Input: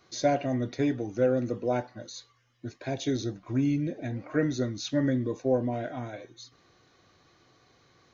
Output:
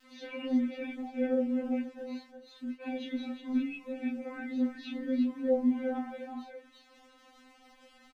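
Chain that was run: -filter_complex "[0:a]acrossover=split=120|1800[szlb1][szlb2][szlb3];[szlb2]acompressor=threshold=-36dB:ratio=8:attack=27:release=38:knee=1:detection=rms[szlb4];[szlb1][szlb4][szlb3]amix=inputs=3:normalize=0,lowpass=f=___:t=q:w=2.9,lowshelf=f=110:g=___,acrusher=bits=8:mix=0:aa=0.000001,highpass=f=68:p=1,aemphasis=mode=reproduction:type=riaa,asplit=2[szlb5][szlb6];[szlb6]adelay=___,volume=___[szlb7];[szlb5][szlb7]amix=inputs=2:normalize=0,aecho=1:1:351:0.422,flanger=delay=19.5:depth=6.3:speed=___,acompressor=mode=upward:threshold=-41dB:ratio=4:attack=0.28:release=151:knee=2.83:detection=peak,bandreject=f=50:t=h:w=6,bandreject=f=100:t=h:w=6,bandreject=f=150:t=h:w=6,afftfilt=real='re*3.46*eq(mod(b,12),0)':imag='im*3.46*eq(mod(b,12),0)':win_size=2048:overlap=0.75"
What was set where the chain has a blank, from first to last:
2.8k, -4.5, 17, -2.5dB, 1.7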